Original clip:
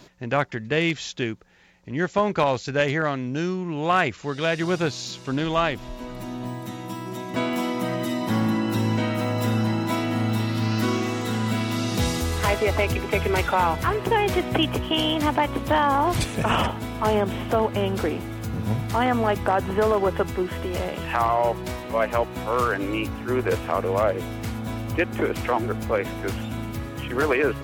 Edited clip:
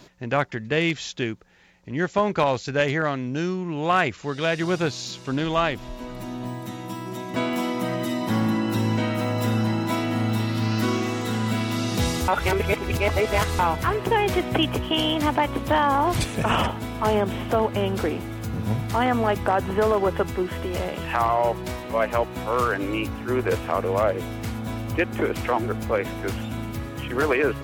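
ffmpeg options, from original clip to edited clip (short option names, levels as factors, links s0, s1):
-filter_complex "[0:a]asplit=3[s0][s1][s2];[s0]atrim=end=12.282[s3];[s1]atrim=start=12.278:end=13.592,asetpts=PTS-STARTPTS,areverse[s4];[s2]atrim=start=13.588[s5];[s3][s4]acrossfade=d=0.004:c1=hsin:c2=hsin[s6];[s6][s5]acrossfade=d=0.004:c1=hsin:c2=hsin"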